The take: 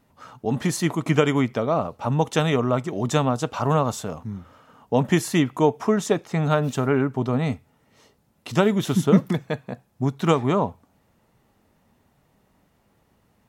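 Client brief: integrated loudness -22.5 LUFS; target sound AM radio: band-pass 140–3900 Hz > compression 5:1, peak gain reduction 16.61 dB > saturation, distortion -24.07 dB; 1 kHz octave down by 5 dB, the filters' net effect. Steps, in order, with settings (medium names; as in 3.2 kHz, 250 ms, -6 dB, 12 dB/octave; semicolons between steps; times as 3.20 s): band-pass 140–3900 Hz; peaking EQ 1 kHz -6.5 dB; compression 5:1, threshold -30 dBFS; saturation -20 dBFS; trim +13 dB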